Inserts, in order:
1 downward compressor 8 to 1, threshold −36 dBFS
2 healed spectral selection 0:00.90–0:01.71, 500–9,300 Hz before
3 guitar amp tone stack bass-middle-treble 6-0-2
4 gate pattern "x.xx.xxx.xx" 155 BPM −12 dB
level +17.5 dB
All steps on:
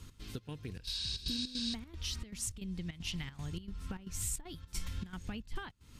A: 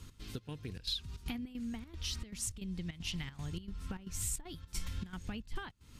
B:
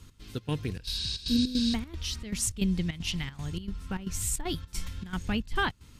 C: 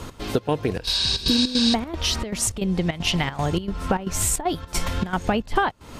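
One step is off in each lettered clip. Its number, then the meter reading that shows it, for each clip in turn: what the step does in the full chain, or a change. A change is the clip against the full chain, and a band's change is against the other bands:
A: 2, 4 kHz band −3.0 dB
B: 1, change in momentary loudness spread +1 LU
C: 3, 1 kHz band +10.5 dB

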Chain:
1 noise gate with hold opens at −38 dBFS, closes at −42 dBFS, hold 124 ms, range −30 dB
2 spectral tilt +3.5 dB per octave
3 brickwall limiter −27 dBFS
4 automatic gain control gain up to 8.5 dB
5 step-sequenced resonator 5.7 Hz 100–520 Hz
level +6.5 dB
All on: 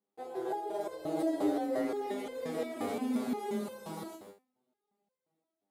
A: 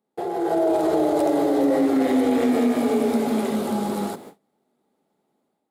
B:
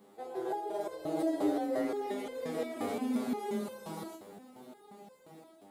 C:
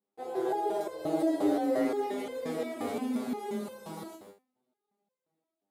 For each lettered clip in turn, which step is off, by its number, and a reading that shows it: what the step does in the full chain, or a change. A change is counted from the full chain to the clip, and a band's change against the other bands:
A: 5, 250 Hz band +2.0 dB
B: 1, change in momentary loudness spread +10 LU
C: 3, average gain reduction 2.5 dB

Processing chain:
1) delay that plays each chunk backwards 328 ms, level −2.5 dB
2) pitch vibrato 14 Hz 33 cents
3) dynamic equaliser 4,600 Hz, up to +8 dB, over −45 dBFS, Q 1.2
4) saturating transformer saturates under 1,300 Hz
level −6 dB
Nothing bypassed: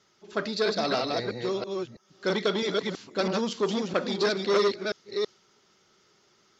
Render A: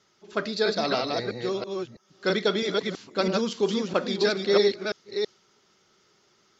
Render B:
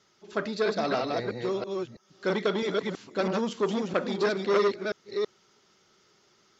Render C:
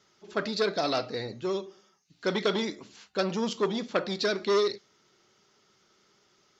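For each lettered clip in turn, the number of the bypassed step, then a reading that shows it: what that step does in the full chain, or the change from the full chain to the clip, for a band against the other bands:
4, 1 kHz band −1.5 dB
3, 4 kHz band −6.0 dB
1, change in integrated loudness −1.5 LU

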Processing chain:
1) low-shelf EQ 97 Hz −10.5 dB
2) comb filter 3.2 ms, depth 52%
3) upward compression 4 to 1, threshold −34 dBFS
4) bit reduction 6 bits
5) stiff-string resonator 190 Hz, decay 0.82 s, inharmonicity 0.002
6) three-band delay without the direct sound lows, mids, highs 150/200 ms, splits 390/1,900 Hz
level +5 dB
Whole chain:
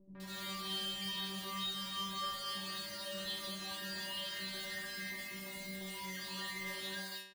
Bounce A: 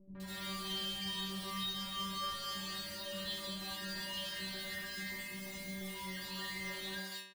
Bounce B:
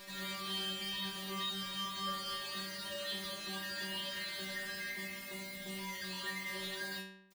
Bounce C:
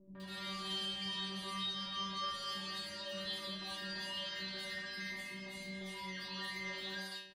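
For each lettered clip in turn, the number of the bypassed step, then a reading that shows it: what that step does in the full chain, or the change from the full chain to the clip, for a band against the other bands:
1, 125 Hz band +2.5 dB
6, echo-to-direct ratio 16.0 dB to none audible
4, distortion level −11 dB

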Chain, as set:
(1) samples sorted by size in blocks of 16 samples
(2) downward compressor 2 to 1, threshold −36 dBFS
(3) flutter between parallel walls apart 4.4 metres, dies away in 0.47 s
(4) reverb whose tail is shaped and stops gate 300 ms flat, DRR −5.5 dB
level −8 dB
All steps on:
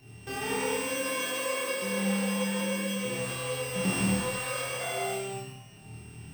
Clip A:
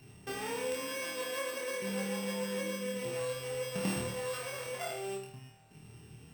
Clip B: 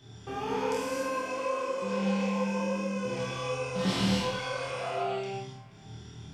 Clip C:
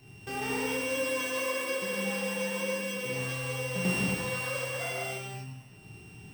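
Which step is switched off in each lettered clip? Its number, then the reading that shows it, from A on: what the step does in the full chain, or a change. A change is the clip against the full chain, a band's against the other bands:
4, echo-to-direct ratio 8.5 dB to −0.5 dB
1, distortion level −3 dB
3, echo-to-direct ratio 8.5 dB to 5.5 dB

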